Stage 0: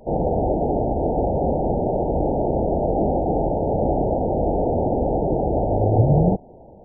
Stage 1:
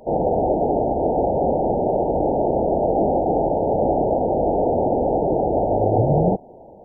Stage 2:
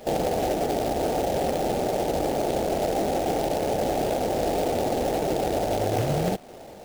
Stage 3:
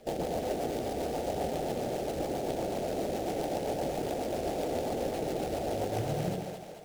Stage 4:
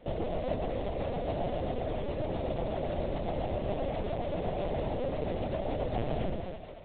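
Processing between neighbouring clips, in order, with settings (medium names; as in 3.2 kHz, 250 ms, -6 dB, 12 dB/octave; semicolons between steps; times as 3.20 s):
bass shelf 190 Hz -11.5 dB; trim +4 dB
compression 2.5:1, threshold -25 dBFS, peak gain reduction 8.5 dB; companded quantiser 4-bit
rotary cabinet horn 7.5 Hz; two-band feedback delay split 510 Hz, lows 101 ms, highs 218 ms, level -5 dB; trim -7 dB
flange 1.1 Hz, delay 4.2 ms, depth 5.7 ms, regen -68%; LPC vocoder at 8 kHz pitch kept; trim +4.5 dB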